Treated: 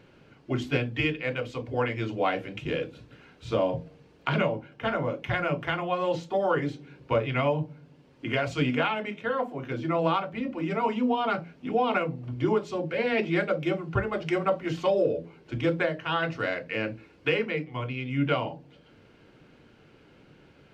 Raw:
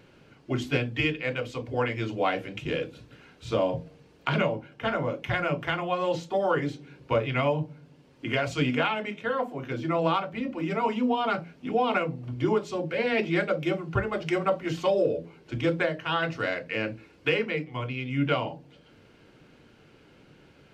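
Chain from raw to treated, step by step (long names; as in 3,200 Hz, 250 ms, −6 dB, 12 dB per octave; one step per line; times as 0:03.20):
high-shelf EQ 5,700 Hz −7 dB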